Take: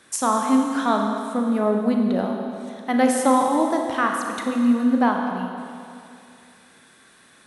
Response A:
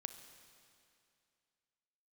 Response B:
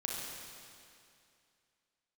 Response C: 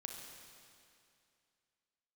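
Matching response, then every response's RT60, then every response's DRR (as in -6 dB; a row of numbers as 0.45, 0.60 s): C; 2.5, 2.5, 2.5 s; 9.0, -2.5, 1.5 dB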